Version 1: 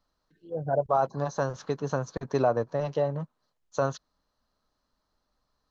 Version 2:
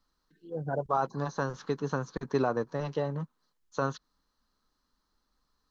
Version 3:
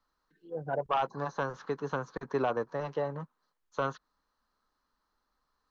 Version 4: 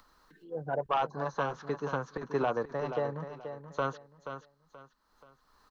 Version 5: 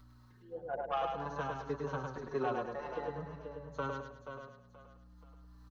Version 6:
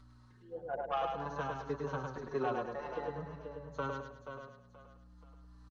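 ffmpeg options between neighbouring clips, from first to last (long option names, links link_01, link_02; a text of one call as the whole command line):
ffmpeg -i in.wav -filter_complex "[0:a]acrossover=split=4700[link_01][link_02];[link_02]acompressor=threshold=-60dB:ratio=4:attack=1:release=60[link_03];[link_01][link_03]amix=inputs=2:normalize=0,equalizer=frequency=100:width_type=o:width=0.67:gain=-12,equalizer=frequency=630:width_type=o:width=0.67:gain=-11,equalizer=frequency=2500:width_type=o:width=0.67:gain=-3,volume=2dB" out.wav
ffmpeg -i in.wav -filter_complex "[0:a]acrossover=split=460|2300[link_01][link_02][link_03];[link_02]aeval=exprs='0.158*sin(PI/2*1.78*val(0)/0.158)':channel_layout=same[link_04];[link_03]alimiter=level_in=18dB:limit=-24dB:level=0:latency=1:release=101,volume=-18dB[link_05];[link_01][link_04][link_05]amix=inputs=3:normalize=0,volume=-6.5dB" out.wav
ffmpeg -i in.wav -filter_complex "[0:a]asplit=2[link_01][link_02];[link_02]aecho=0:1:480|960|1440:0.335|0.0871|0.0226[link_03];[link_01][link_03]amix=inputs=2:normalize=0,acompressor=mode=upward:threshold=-50dB:ratio=2.5" out.wav
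ffmpeg -i in.wav -filter_complex "[0:a]asplit=2[link_01][link_02];[link_02]aecho=0:1:105|210|315|420|525:0.631|0.233|0.0864|0.032|0.0118[link_03];[link_01][link_03]amix=inputs=2:normalize=0,aeval=exprs='val(0)+0.00316*(sin(2*PI*60*n/s)+sin(2*PI*2*60*n/s)/2+sin(2*PI*3*60*n/s)/3+sin(2*PI*4*60*n/s)/4+sin(2*PI*5*60*n/s)/5)':channel_layout=same,asplit=2[link_04][link_05];[link_05]adelay=4.8,afreqshift=-0.49[link_06];[link_04][link_06]amix=inputs=2:normalize=1,volume=-3.5dB" out.wav
ffmpeg -i in.wav -af "aresample=22050,aresample=44100" out.wav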